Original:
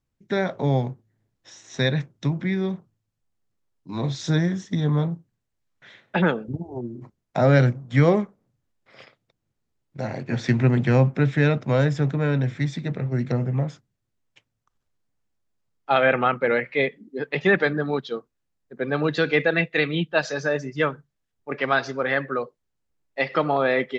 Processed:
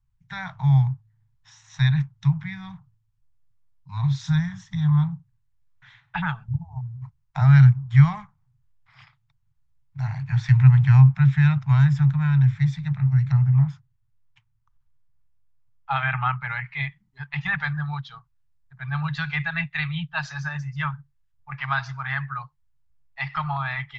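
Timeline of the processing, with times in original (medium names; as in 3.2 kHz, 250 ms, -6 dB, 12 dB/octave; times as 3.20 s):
13.54–15.98 s: treble shelf 4.9 kHz -7 dB
whole clip: elliptic band-stop 140–900 Hz, stop band 40 dB; tilt EQ -2.5 dB/octave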